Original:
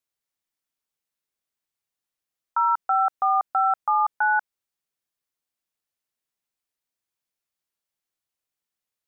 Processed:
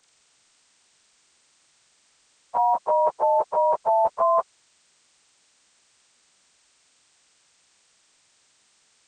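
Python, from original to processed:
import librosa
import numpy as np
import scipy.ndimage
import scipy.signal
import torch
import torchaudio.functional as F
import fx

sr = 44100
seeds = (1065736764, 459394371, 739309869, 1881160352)

y = fx.partial_stretch(x, sr, pct=80)
y = fx.spectral_comp(y, sr, ratio=2.0)
y = y * librosa.db_to_amplitude(4.0)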